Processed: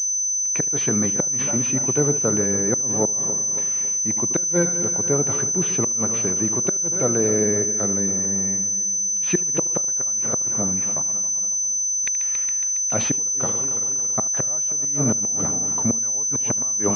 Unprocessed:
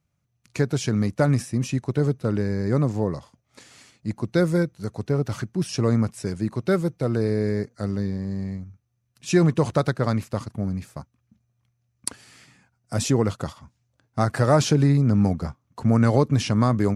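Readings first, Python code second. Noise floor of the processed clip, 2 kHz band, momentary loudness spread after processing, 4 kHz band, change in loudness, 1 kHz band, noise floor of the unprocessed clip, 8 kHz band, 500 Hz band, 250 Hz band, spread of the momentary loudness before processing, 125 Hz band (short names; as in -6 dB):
-23 dBFS, -1.0 dB, 1 LU, n/a, +4.5 dB, -4.0 dB, -73 dBFS, +24.0 dB, -1.0 dB, -3.5 dB, 15 LU, -8.5 dB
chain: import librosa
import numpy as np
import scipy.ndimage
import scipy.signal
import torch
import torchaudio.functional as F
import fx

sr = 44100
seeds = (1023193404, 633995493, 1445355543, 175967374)

p1 = fx.reverse_delay_fb(x, sr, ms=138, feedback_pct=69, wet_db=-13.0)
p2 = fx.low_shelf(p1, sr, hz=330.0, db=-11.5)
p3 = fx.gate_flip(p2, sr, shuts_db=-15.0, range_db=-28)
p4 = scipy.signal.sosfilt(scipy.signal.butter(2, 120.0, 'highpass', fs=sr, output='sos'), p3)
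p5 = p4 + fx.echo_feedback(p4, sr, ms=75, feedback_pct=22, wet_db=-21.0, dry=0)
p6 = fx.dynamic_eq(p5, sr, hz=1700.0, q=0.92, threshold_db=-47.0, ratio=4.0, max_db=-4)
p7 = fx.pwm(p6, sr, carrier_hz=6100.0)
y = p7 * librosa.db_to_amplitude(8.0)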